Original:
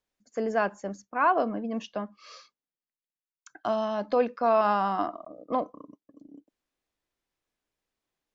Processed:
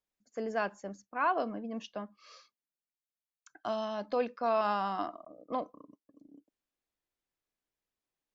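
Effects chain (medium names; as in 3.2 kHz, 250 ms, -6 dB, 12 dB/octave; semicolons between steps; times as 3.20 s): dynamic bell 4.3 kHz, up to +7 dB, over -46 dBFS, Q 0.74; trim -7 dB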